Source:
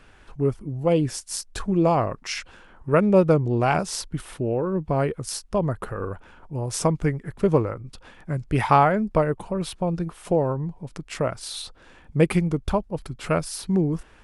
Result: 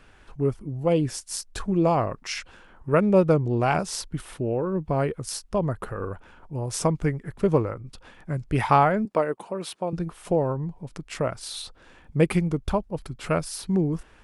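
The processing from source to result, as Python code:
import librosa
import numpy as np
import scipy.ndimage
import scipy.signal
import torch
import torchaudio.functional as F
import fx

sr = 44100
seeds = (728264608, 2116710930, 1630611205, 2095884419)

y = fx.highpass(x, sr, hz=280.0, slope=12, at=(9.05, 9.93))
y = F.gain(torch.from_numpy(y), -1.5).numpy()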